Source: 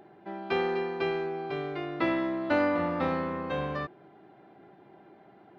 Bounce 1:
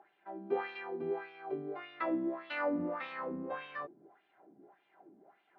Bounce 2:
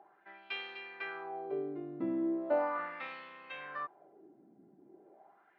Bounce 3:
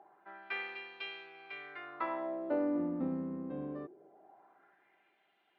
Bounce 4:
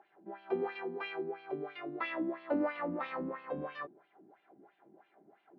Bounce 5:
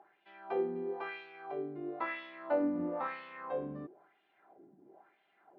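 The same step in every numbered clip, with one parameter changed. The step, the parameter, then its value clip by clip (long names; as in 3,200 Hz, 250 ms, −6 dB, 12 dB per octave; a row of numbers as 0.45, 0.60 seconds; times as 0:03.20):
LFO wah, speed: 1.7, 0.38, 0.23, 3, 1 Hertz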